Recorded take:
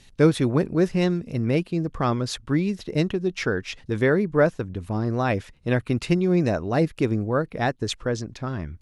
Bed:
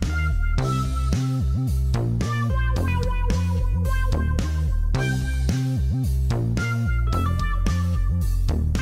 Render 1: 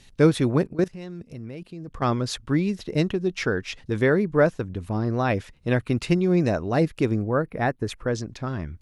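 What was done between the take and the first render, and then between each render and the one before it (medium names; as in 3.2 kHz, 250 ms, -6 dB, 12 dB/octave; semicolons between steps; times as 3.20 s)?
0.63–2.02 s: level held to a coarse grid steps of 18 dB; 4.91–5.36 s: peaking EQ 7.7 kHz -14 dB 0.23 oct; 7.22–8.08 s: high-order bell 4.8 kHz -8.5 dB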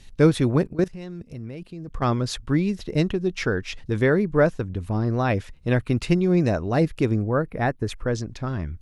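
bass shelf 64 Hz +11 dB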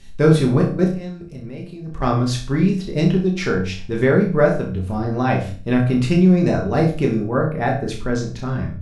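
flutter echo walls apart 5.5 m, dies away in 0.36 s; simulated room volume 180 m³, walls furnished, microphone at 1.2 m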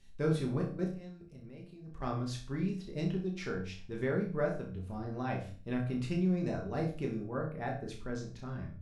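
trim -17 dB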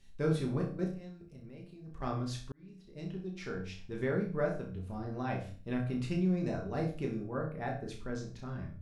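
2.52–3.83 s: fade in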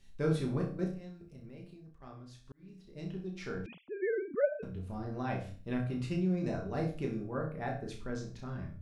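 1.73–2.68 s: dip -14.5 dB, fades 0.24 s; 3.66–4.63 s: formants replaced by sine waves; 5.87–6.44 s: comb of notches 220 Hz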